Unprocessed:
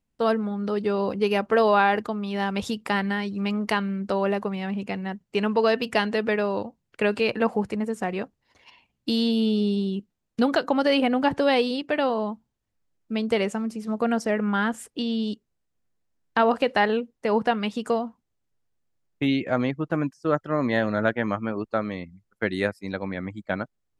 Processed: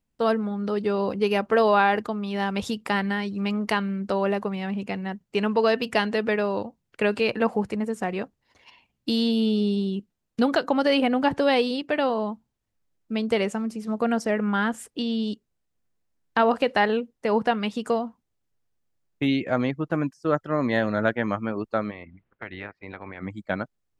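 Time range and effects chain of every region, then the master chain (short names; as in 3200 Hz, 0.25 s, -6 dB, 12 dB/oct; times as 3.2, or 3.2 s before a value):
21.9–23.21 spectral limiter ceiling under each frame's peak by 16 dB + LPF 2700 Hz 24 dB/oct + compressor 2.5:1, threshold -37 dBFS
whole clip: dry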